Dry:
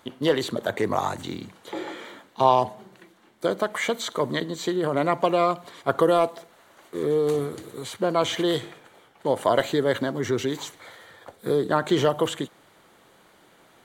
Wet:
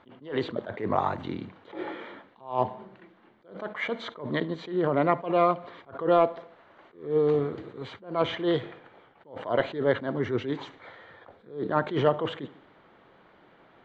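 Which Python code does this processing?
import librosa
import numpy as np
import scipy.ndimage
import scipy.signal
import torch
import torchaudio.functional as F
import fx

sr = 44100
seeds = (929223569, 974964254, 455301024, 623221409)

p1 = scipy.signal.sosfilt(scipy.signal.bessel(4, 2300.0, 'lowpass', norm='mag', fs=sr, output='sos'), x)
p2 = p1 + fx.echo_feedback(p1, sr, ms=73, feedback_pct=58, wet_db=-23, dry=0)
y = fx.attack_slew(p2, sr, db_per_s=150.0)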